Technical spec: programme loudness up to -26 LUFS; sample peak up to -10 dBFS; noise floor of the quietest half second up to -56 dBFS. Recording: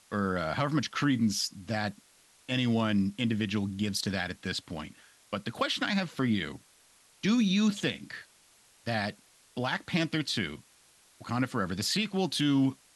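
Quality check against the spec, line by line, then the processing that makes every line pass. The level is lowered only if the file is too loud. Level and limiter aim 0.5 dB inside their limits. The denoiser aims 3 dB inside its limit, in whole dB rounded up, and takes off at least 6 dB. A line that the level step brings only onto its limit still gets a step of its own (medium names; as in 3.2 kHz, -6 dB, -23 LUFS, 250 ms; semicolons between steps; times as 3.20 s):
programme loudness -30.5 LUFS: pass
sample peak -14.5 dBFS: pass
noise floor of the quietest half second -62 dBFS: pass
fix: none needed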